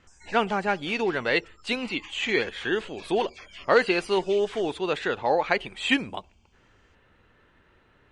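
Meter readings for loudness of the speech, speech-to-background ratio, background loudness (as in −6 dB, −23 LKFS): −26.0 LKFS, 19.5 dB, −45.5 LKFS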